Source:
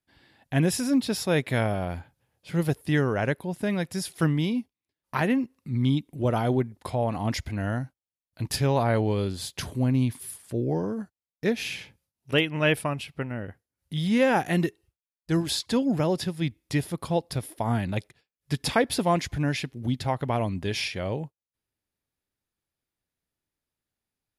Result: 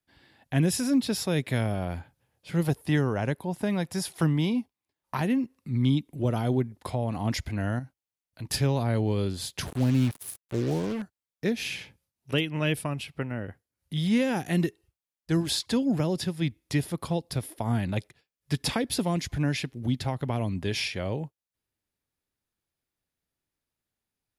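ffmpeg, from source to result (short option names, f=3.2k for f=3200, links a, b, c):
-filter_complex "[0:a]asettb=1/sr,asplit=3[a][b][c];[a]atrim=end=2.644[d];[b]atrim=start=2.64:end=5.27,asetpts=PTS-STARTPTS,afade=t=in:d=0.004:c=qsin,afade=t=out:st=2.626:d=0.004:c=qsin,equalizer=f=870:w=1.4:g=7[e];[c]atrim=start=5.266[f];[d][e]acrossfade=d=0.004:c1=hsin:c2=qsin[g];[g][f]acrossfade=d=0.004:c1=qsin:c2=hsin,asettb=1/sr,asplit=3[h][i][j];[h]atrim=end=7.794[k];[i]atrim=start=7.79:end=8.49,asetpts=PTS-STARTPTS,afade=t=in:d=0.004:c=qsin,afade=t=out:st=0.696:d=0.004:c=qsin,acompressor=threshold=-45dB:ratio=1.5:attack=3.2:release=140:knee=1:detection=peak[l];[j]atrim=start=8.486[m];[k][l]acrossfade=d=0.004:c1=hsin:c2=qsin[n];[n][m]acrossfade=d=0.004:c1=qsin:c2=hsin,asettb=1/sr,asplit=3[o][p][q];[o]atrim=end=9.664[r];[p]atrim=start=9.66:end=11.02,asetpts=PTS-STARTPTS,afade=t=in:d=0.004:c=qsin,afade=t=out:st=1.356:d=0.004:c=qsin,acrusher=bits=5:mix=0:aa=0.5[s];[q]atrim=start=11.016[t];[r][s]acrossfade=d=0.004:c1=hsin:c2=qsin[u];[u][t]acrossfade=d=0.004:c1=qsin:c2=hsin,acrossover=split=350|3000[v][w][x];[w]acompressor=threshold=-31dB:ratio=6[y];[v][y][x]amix=inputs=3:normalize=0"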